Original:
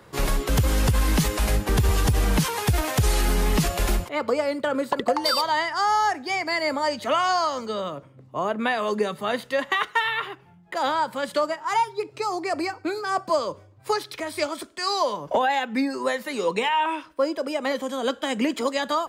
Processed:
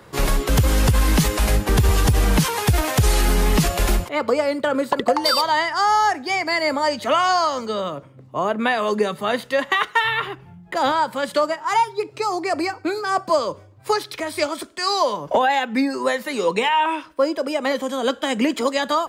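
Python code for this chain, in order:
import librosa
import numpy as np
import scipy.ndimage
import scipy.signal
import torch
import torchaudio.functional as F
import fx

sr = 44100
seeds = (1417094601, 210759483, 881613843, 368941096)

y = fx.low_shelf(x, sr, hz=190.0, db=11.5, at=(10.04, 10.92))
y = F.gain(torch.from_numpy(y), 4.0).numpy()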